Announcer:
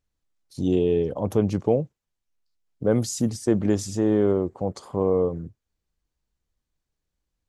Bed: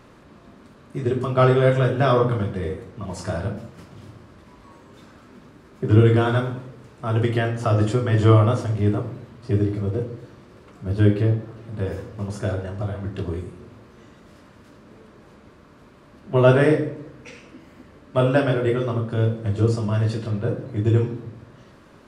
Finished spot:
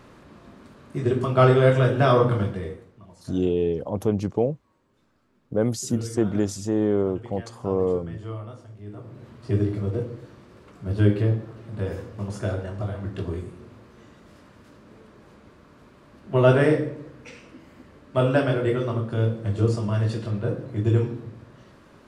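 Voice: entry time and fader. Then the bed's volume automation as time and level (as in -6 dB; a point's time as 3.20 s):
2.70 s, -1.5 dB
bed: 2.46 s 0 dB
3.18 s -20 dB
8.86 s -20 dB
9.28 s -2 dB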